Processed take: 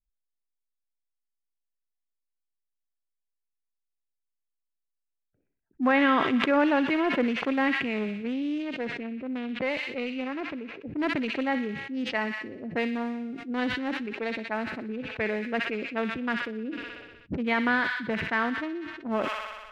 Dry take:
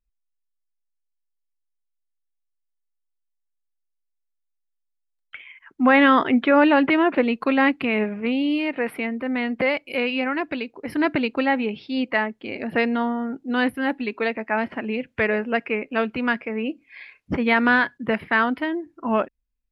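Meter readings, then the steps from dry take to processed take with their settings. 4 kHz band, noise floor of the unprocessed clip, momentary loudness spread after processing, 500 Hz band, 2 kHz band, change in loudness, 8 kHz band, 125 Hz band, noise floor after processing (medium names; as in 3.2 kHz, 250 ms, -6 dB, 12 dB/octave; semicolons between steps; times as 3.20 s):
-4.0 dB, -77 dBFS, 12 LU, -7.0 dB, -6.5 dB, -6.5 dB, no reading, -4.0 dB, -83 dBFS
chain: local Wiener filter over 41 samples; level-controlled noise filter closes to 340 Hz, open at -19.5 dBFS; on a send: feedback echo behind a high-pass 62 ms, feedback 67%, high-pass 2 kHz, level -7 dB; on the sum: decay stretcher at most 42 dB/s; trim -6.5 dB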